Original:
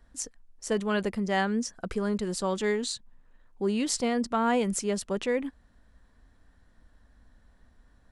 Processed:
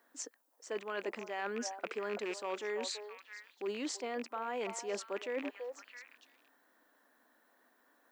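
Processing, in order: rattle on loud lows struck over -43 dBFS, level -27 dBFS; elliptic band-pass 290–7300 Hz, stop band 40 dB; bass shelf 470 Hz -10 dB; in parallel at +1 dB: peak limiter -22.5 dBFS, peak gain reduction 8 dB; on the sum: treble shelf 2.4 kHz -11 dB; gain riding 0.5 s; repeats whose band climbs or falls 332 ms, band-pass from 690 Hz, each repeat 1.4 oct, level -10 dB; reverse; compression 6:1, threshold -34 dBFS, peak gain reduction 11 dB; reverse; added noise violet -77 dBFS; trim -1 dB

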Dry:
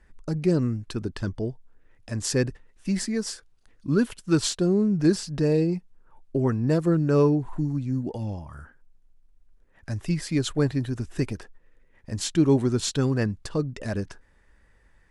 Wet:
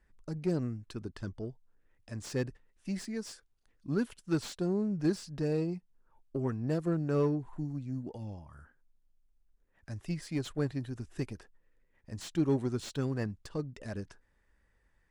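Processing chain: Chebyshev shaper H 7 -31 dB, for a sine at -9 dBFS; slew-rate limiter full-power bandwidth 120 Hz; trim -9 dB

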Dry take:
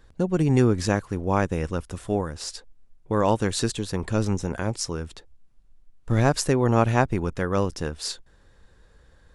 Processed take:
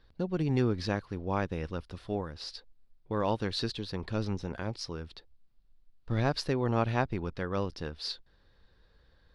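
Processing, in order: resonant high shelf 5.8 kHz -9.5 dB, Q 3; trim -8.5 dB

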